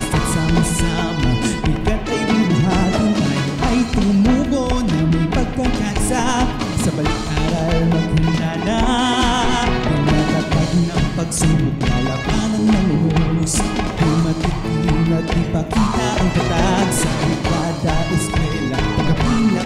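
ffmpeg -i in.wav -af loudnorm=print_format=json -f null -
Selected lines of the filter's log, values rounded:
"input_i" : "-17.7",
"input_tp" : "-7.3",
"input_lra" : "1.1",
"input_thresh" : "-27.7",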